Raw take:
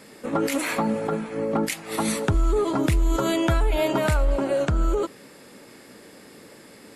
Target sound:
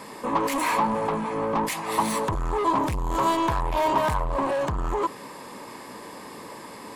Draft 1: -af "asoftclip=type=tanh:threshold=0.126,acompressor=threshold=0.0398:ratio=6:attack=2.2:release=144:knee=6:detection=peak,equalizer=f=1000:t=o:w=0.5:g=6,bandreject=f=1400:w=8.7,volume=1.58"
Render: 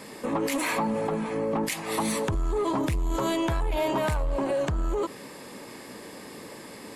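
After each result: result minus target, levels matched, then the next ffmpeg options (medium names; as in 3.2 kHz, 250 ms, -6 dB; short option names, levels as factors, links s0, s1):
saturation: distortion -9 dB; 1 kHz band -5.5 dB
-af "asoftclip=type=tanh:threshold=0.0447,acompressor=threshold=0.0398:ratio=6:attack=2.2:release=144:knee=6:detection=peak,equalizer=f=1000:t=o:w=0.5:g=6,bandreject=f=1400:w=8.7,volume=1.58"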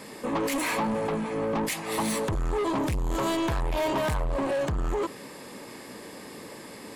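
1 kHz band -5.0 dB
-af "asoftclip=type=tanh:threshold=0.0447,acompressor=threshold=0.0398:ratio=6:attack=2.2:release=144:knee=6:detection=peak,equalizer=f=1000:t=o:w=0.5:g=17,bandreject=f=1400:w=8.7,volume=1.58"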